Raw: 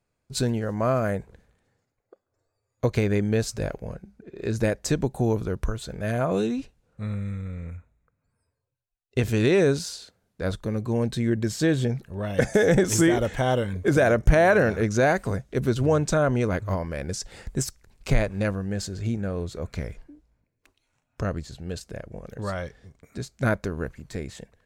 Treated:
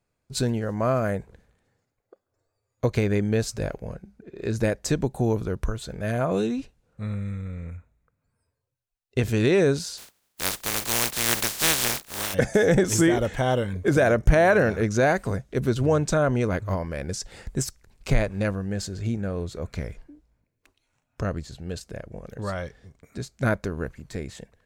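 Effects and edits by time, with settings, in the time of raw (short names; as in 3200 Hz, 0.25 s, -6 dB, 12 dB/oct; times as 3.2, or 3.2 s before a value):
9.97–12.33 spectral contrast lowered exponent 0.16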